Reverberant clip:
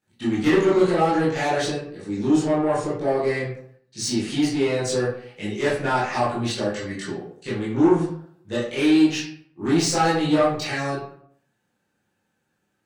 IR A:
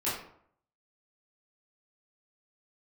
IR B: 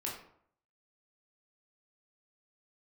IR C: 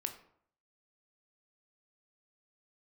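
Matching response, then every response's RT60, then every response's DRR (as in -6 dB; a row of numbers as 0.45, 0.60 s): A; 0.65, 0.65, 0.65 s; -11.0, -4.0, 5.5 dB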